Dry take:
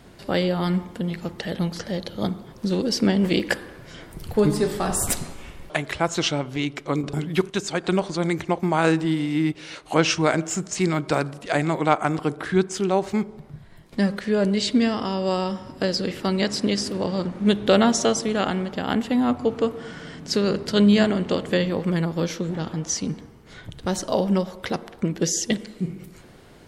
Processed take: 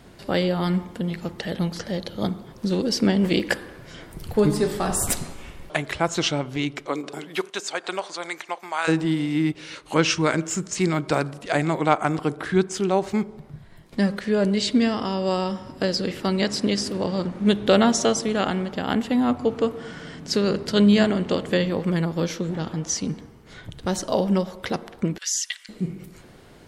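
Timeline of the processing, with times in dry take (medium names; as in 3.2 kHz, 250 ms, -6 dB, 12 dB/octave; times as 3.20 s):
6.85–8.87 s: high-pass 330 Hz -> 1.1 kHz
9.64–10.80 s: peaking EQ 710 Hz -11.5 dB 0.25 oct
25.18–25.69 s: inverse Chebyshev high-pass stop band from 310 Hz, stop band 70 dB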